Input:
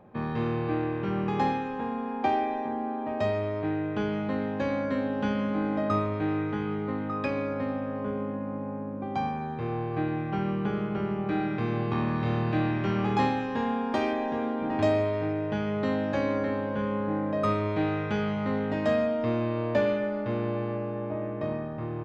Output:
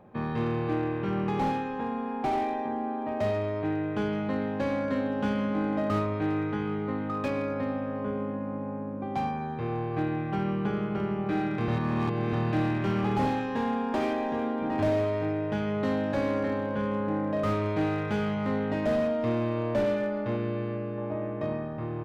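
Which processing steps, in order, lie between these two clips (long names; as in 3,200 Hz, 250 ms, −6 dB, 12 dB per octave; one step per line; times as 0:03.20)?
0:11.68–0:12.33: reverse
0:20.36–0:20.98: parametric band 830 Hz −8.5 dB 0.74 octaves
slew-rate limiting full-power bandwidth 41 Hz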